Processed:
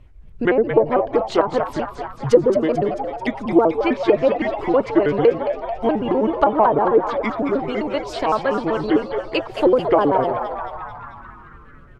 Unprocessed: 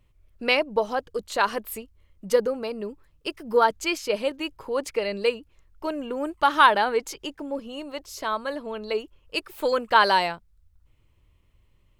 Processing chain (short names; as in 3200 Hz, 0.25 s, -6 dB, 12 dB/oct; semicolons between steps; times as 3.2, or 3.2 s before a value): trilling pitch shifter -5.5 st, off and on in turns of 64 ms; in parallel at -2 dB: compressor, threshold -35 dBFS, peak gain reduction 21 dB; on the sum: bell 180 Hz -9.5 dB 0.37 oct; treble ducked by the level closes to 610 Hz, closed at -17.5 dBFS; LPF 2400 Hz 6 dB/oct; low shelf 430 Hz +5 dB; frequency-shifting echo 0.22 s, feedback 61%, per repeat +110 Hz, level -8.5 dB; gain +6.5 dB